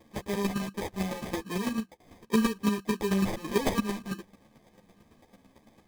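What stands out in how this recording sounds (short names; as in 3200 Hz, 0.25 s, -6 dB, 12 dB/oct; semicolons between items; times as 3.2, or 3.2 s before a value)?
aliases and images of a low sample rate 1400 Hz, jitter 0%; chopped level 9 Hz, depth 65%, duty 10%; a shimmering, thickened sound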